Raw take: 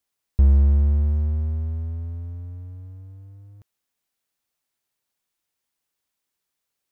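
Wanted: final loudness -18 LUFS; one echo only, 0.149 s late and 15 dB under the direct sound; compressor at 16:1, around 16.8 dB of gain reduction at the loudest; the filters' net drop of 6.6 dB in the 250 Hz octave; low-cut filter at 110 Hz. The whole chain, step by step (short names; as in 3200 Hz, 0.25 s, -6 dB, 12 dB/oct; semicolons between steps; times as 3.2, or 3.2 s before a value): HPF 110 Hz; bell 250 Hz -8 dB; compressor 16:1, threshold -38 dBFS; echo 0.149 s -15 dB; gain +26 dB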